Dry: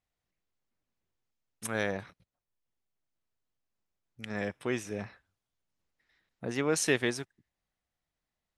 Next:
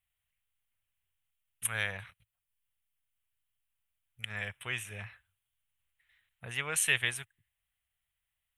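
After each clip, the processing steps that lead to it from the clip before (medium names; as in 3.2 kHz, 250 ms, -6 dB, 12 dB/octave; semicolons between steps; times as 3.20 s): FFT filter 110 Hz 0 dB, 290 Hz -23 dB, 450 Hz -14 dB, 3.1 kHz +8 dB, 5 kHz -15 dB, 9.2 kHz +8 dB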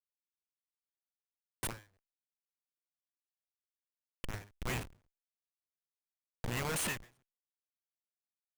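Schmitt trigger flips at -37.5 dBFS; endings held to a fixed fall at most 170 dB/s; trim +6 dB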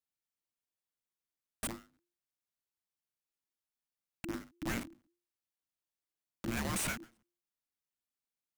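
frequency shift -350 Hz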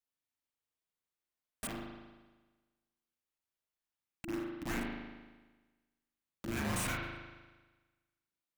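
spring tank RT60 1.3 s, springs 38 ms, chirp 25 ms, DRR -2 dB; trim -3 dB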